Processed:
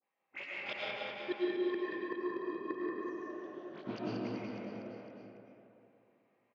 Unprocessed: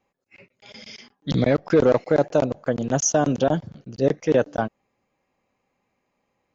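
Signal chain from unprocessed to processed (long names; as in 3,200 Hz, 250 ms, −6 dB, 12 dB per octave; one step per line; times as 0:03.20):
tilt shelving filter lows −7 dB, about 670 Hz
leveller curve on the samples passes 2
downward compressor 1.5 to 1, threshold −32 dBFS, peak gain reduction 8.5 dB
leveller curve on the samples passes 2
0:00.92–0:02.96: channel vocoder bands 32, square 358 Hz
chorus effect 2 Hz, delay 18 ms, depth 5.6 ms
all-pass dispersion highs, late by 40 ms, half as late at 1,600 Hz
gate with flip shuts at −21 dBFS, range −38 dB
band-pass filter 190–4,900 Hz
high-frequency loss of the air 260 metres
reverse bouncing-ball delay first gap 180 ms, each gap 1.1×, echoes 5
comb and all-pass reverb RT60 2.5 s, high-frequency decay 0.35×, pre-delay 70 ms, DRR −6 dB
level −2.5 dB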